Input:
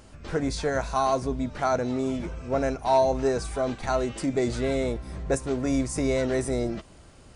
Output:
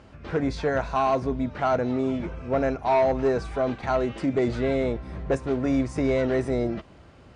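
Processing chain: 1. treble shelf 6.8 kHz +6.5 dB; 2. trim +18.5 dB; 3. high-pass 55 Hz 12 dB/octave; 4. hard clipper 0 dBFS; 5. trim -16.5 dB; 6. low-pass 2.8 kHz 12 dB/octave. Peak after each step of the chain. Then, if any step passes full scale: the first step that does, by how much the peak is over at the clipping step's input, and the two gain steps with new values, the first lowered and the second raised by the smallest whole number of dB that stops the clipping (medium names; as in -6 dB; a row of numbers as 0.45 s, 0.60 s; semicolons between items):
-12.0 dBFS, +6.5 dBFS, +7.0 dBFS, 0.0 dBFS, -16.5 dBFS, -16.0 dBFS; step 2, 7.0 dB; step 2 +11.5 dB, step 5 -9.5 dB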